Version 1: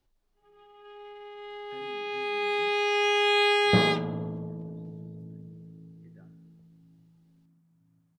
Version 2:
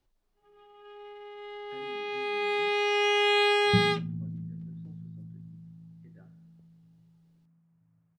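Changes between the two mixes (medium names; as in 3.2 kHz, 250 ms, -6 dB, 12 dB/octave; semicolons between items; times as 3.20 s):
first sound: send off; second sound: add inverse Chebyshev low-pass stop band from 520 Hz, stop band 50 dB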